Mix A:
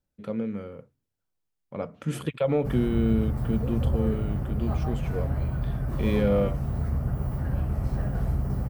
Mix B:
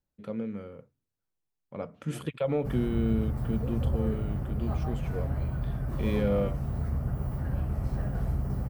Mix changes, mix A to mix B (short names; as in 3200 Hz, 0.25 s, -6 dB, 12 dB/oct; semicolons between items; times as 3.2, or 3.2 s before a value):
first voice -4.0 dB; background -3.0 dB